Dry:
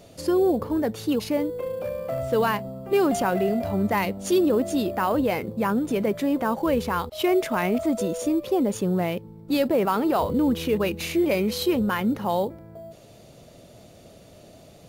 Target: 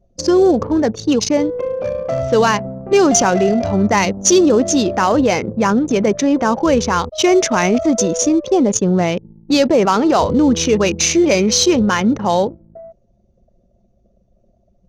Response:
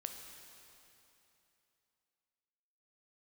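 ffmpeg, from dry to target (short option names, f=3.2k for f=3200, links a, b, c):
-af "anlmdn=6.31,lowpass=f=6.1k:t=q:w=10,acontrast=40,volume=3.5dB"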